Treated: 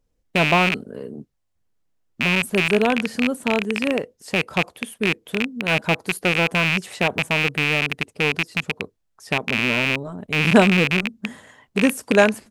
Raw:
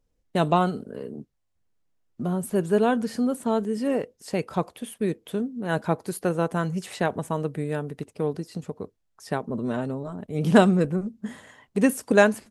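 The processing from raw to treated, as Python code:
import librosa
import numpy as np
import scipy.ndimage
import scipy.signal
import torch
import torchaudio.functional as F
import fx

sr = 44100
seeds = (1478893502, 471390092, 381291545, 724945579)

y = fx.rattle_buzz(x, sr, strikes_db=-31.0, level_db=-10.0)
y = F.gain(torch.from_numpy(y), 2.0).numpy()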